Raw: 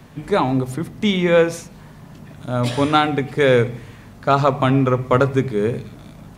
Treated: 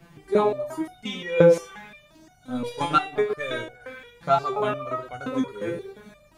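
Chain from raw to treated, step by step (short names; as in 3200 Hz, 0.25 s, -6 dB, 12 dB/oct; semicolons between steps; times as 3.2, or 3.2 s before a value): delay with a stepping band-pass 0.115 s, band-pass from 460 Hz, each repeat 0.7 oct, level -4.5 dB; 2.47–3.8 transient shaper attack +4 dB, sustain -7 dB; stepped resonator 5.7 Hz 170–730 Hz; gain +6 dB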